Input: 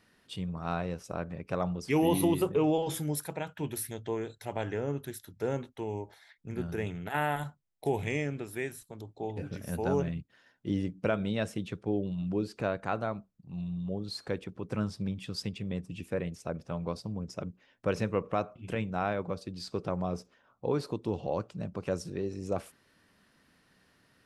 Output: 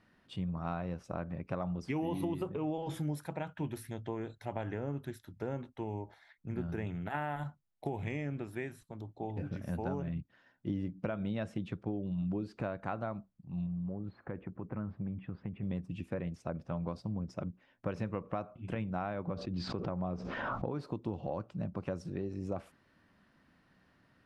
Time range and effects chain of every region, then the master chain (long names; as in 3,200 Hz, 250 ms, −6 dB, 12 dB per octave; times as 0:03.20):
0:13.66–0:15.63: low-pass filter 2,100 Hz 24 dB per octave + downward compressor 3 to 1, threshold −35 dBFS
0:19.27–0:20.72: high-frequency loss of the air 120 metres + background raised ahead of every attack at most 29 dB per second
whole clip: downward compressor 6 to 1, threshold −31 dBFS; low-pass filter 1,500 Hz 6 dB per octave; parametric band 440 Hz −6.5 dB 0.39 octaves; level +1 dB